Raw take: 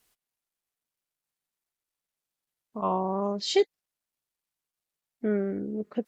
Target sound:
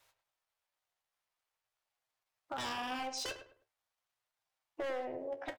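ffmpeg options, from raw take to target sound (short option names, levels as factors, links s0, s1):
-filter_complex "[0:a]lowpass=f=2700:p=1,lowshelf=f=370:t=q:w=1.5:g=-10.5,aeval=exprs='0.0355*(abs(mod(val(0)/0.0355+3,4)-2)-1)':c=same,acompressor=threshold=0.00398:ratio=2.5,flanger=delay=9.7:depth=8.2:regen=-46:speed=0.41:shape=sinusoidal,asetrate=52444,aresample=44100,atempo=0.840896,equalizer=f=100:t=o:w=0.33:g=12,equalizer=f=200:t=o:w=0.33:g=-8,equalizer=f=315:t=o:w=0.33:g=4,asplit=2[s0][s1];[s1]adelay=112,lowpass=f=1700:p=1,volume=0.335,asplit=2[s2][s3];[s3]adelay=112,lowpass=f=1700:p=1,volume=0.3,asplit=2[s4][s5];[s5]adelay=112,lowpass=f=1700:p=1,volume=0.3[s6];[s2][s4][s6]amix=inputs=3:normalize=0[s7];[s0][s7]amix=inputs=2:normalize=0,asetrate=48000,aresample=44100,volume=2.99"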